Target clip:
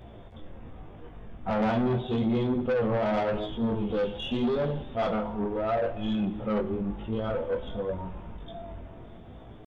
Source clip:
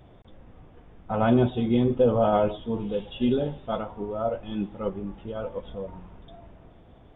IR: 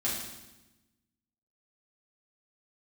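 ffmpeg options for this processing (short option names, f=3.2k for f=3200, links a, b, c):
-filter_complex "[0:a]acompressor=threshold=-24dB:ratio=4,atempo=0.74,flanger=delay=18.5:depth=5.5:speed=0.84,asoftclip=type=tanh:threshold=-31.5dB,asplit=2[a][b];[1:a]atrim=start_sample=2205[c];[b][c]afir=irnorm=-1:irlink=0,volume=-18dB[d];[a][d]amix=inputs=2:normalize=0,volume=7.5dB"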